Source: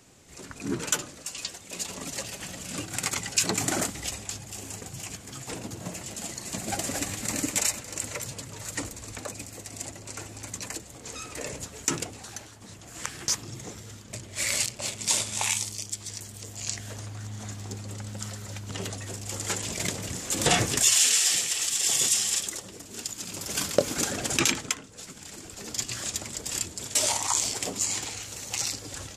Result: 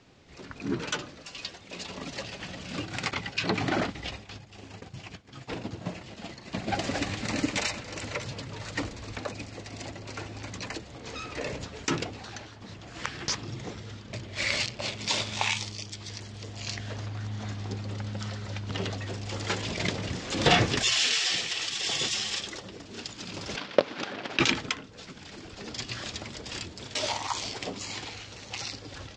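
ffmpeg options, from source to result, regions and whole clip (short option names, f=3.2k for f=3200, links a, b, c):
-filter_complex "[0:a]asettb=1/sr,asplit=3[a][b][c];[a]atrim=end=3.114[d];[b]atrim=start=3.11:end=6.75,asetpts=PTS-STARTPTS,afade=t=in:d=0.004:c=qsin,afade=t=out:st=3.636:d=0.004:c=qsin,acrossover=split=4600[e][f];[f]acompressor=threshold=-41dB:ratio=4:attack=1:release=60[g];[e][g]amix=inputs=2:normalize=0,agate=range=-33dB:threshold=-36dB:ratio=3:release=100:detection=peak[h];[c]atrim=start=6.746[i];[d][h]acrossfade=d=0.004:c1=hsin:c2=qsin[j];[j][i]acrossfade=d=0.004:c1=qsin:c2=hsin,asettb=1/sr,asplit=3[k][l][m];[k]atrim=end=23.564[n];[l]atrim=start=23.56:end=24.4,asetpts=PTS-STARTPTS,afade=t=in:d=0.004:c=qsin,afade=t=out:st=0.836:d=0.004:c=qsin,lowshelf=f=230:g=-6.5,acrusher=bits=4:dc=4:mix=0:aa=0.000001,highpass=160,lowpass=3.8k[o];[m]atrim=start=24.396[p];[n][o]acrossfade=d=0.004:c1=hsin:c2=qsin[q];[q][p]acrossfade=d=0.004:c1=qsin:c2=hsin,lowpass=f=4.8k:w=0.5412,lowpass=f=4.8k:w=1.3066,dynaudnorm=f=200:g=31:m=3dB"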